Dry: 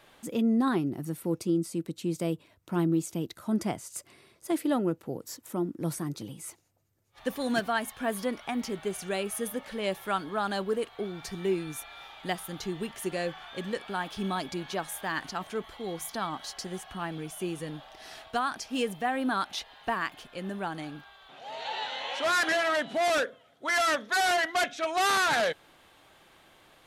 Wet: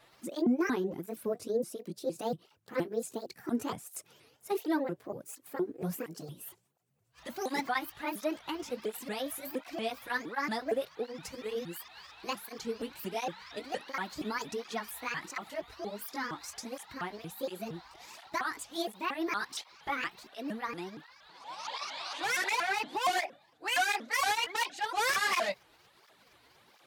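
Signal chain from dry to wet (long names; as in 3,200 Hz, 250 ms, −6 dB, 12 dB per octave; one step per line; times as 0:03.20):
pitch shifter swept by a sawtooth +7.5 semitones, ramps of 233 ms
through-zero flanger with one copy inverted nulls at 1.4 Hz, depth 5.7 ms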